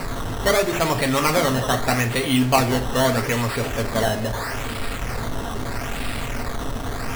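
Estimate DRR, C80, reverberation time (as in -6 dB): 3.5 dB, 17.5 dB, 0.40 s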